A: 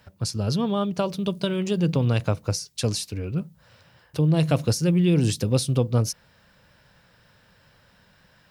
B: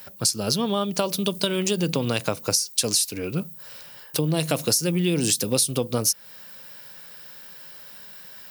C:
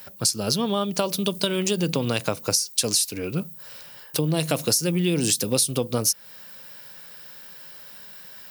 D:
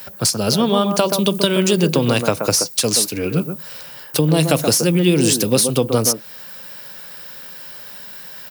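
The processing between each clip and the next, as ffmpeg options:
-af "highpass=210,aemphasis=mode=production:type=75fm,acompressor=threshold=0.0447:ratio=3,volume=2.11"
-af anull
-filter_complex "[0:a]acrossover=split=150|1900[s0][s1][s2];[s1]aecho=1:1:128:0.531[s3];[s2]asoftclip=type=tanh:threshold=0.126[s4];[s0][s3][s4]amix=inputs=3:normalize=0,volume=2.37"

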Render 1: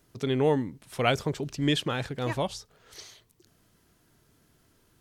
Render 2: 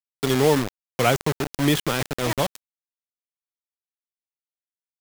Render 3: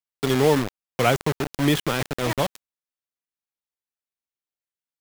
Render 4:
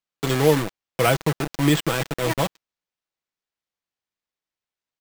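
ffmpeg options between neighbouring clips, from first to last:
-filter_complex "[0:a]acrossover=split=150|1300|2100[s0][s1][s2][s3];[s3]alimiter=level_in=1.26:limit=0.0631:level=0:latency=1:release=223,volume=0.794[s4];[s0][s1][s2][s4]amix=inputs=4:normalize=0,acrusher=bits=4:mix=0:aa=0.000001,volume=1.78"
-af "bass=f=250:g=0,treble=f=4000:g=-3"
-af "aecho=1:1:6.1:0.48,acrusher=samples=4:mix=1:aa=0.000001"

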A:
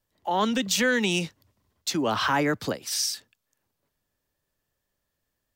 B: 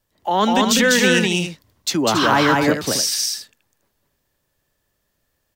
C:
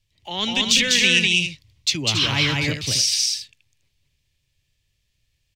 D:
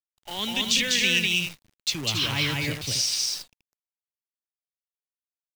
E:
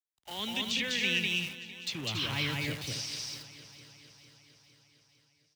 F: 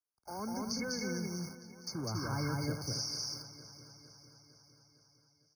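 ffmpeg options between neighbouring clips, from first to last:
-af "aecho=1:1:198.3|277:0.794|0.355,volume=2.11"
-af "firequalizer=gain_entry='entry(130,0);entry(190,-14);entry(660,-20);entry(1500,-19);entry(2300,1);entry(15000,-19)':delay=0.05:min_phase=1,volume=1.78"
-af "acrusher=bits=6:dc=4:mix=0:aa=0.000001,volume=0.531"
-filter_complex "[0:a]highpass=47,acrossover=split=410|460|3800[s0][s1][s2][s3];[s3]acompressor=threshold=0.0158:ratio=6[s4];[s0][s1][s2][s4]amix=inputs=4:normalize=0,aecho=1:1:455|910|1365|1820|2275|2730:0.158|0.0919|0.0533|0.0309|0.0179|0.0104,volume=0.501"
-af "asuperstop=centerf=1900:order=8:qfactor=3.2,afftfilt=real='re*eq(mod(floor(b*sr/1024/2200),2),0)':imag='im*eq(mod(floor(b*sr/1024/2200),2),0)':win_size=1024:overlap=0.75,volume=1.12"

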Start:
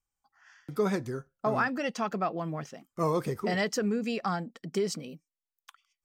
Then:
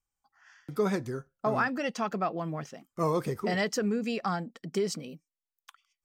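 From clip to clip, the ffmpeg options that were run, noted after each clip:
-af anull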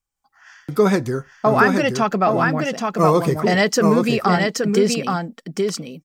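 -filter_complex "[0:a]dynaudnorm=f=120:g=5:m=2.82,asplit=2[s0][s1];[s1]aecho=0:1:824:0.631[s2];[s0][s2]amix=inputs=2:normalize=0,volume=1.41"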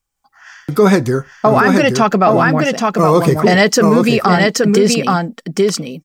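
-af "alimiter=level_in=2.66:limit=0.891:release=50:level=0:latency=1,volume=0.891"

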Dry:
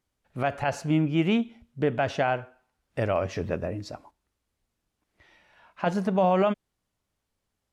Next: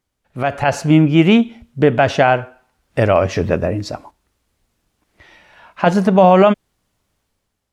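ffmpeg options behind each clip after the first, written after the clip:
-af "dynaudnorm=f=120:g=9:m=2.51,volume=1.68"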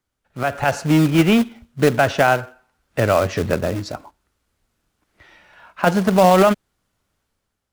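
-filter_complex "[0:a]equalizer=f=1400:t=o:w=0.41:g=5,acrossover=split=200|680|1800[s0][s1][s2][s3];[s1]acrusher=bits=2:mode=log:mix=0:aa=0.000001[s4];[s0][s4][s2][s3]amix=inputs=4:normalize=0,volume=0.668"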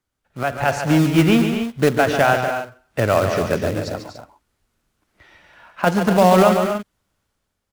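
-af "aecho=1:1:142.9|242|285.7:0.398|0.316|0.251,volume=0.891"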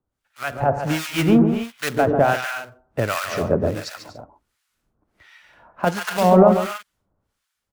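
-filter_complex "[0:a]acrossover=split=1100[s0][s1];[s0]aeval=exprs='val(0)*(1-1/2+1/2*cos(2*PI*1.4*n/s))':c=same[s2];[s1]aeval=exprs='val(0)*(1-1/2-1/2*cos(2*PI*1.4*n/s))':c=same[s3];[s2][s3]amix=inputs=2:normalize=0,volume=1.33"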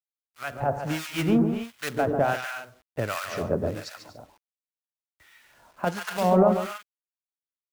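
-af "acrusher=bits=8:mix=0:aa=0.000001,volume=0.473"

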